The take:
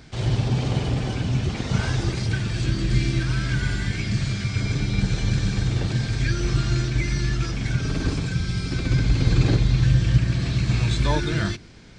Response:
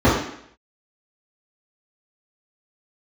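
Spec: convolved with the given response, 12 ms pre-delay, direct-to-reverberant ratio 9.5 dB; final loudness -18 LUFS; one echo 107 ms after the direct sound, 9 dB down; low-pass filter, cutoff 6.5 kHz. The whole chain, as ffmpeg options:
-filter_complex "[0:a]lowpass=6500,aecho=1:1:107:0.355,asplit=2[s0][s1];[1:a]atrim=start_sample=2205,adelay=12[s2];[s1][s2]afir=irnorm=-1:irlink=0,volume=0.0211[s3];[s0][s3]amix=inputs=2:normalize=0,volume=1.19"

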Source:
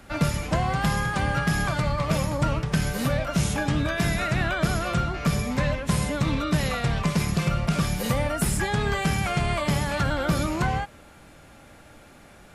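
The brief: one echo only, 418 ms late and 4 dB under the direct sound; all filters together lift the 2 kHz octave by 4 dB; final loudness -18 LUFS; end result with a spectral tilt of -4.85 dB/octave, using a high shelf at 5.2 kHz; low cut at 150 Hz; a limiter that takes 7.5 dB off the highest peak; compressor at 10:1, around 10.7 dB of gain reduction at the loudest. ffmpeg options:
-af "highpass=150,equalizer=f=2000:t=o:g=6,highshelf=f=5200:g=-6,acompressor=threshold=0.0282:ratio=10,alimiter=level_in=1.33:limit=0.0631:level=0:latency=1,volume=0.75,aecho=1:1:418:0.631,volume=6.68"

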